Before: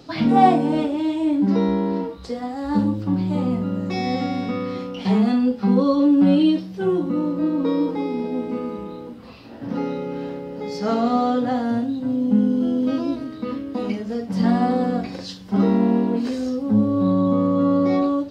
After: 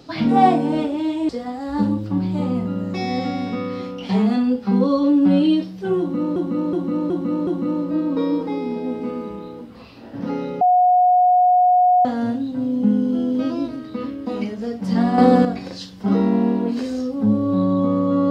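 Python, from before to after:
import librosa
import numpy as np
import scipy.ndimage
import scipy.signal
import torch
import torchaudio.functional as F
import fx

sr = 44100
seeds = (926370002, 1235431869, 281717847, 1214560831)

y = fx.edit(x, sr, fx.cut(start_s=1.29, length_s=0.96),
    fx.repeat(start_s=6.95, length_s=0.37, count=5),
    fx.bleep(start_s=10.09, length_s=1.44, hz=725.0, db=-11.0),
    fx.clip_gain(start_s=14.66, length_s=0.27, db=8.0), tone=tone)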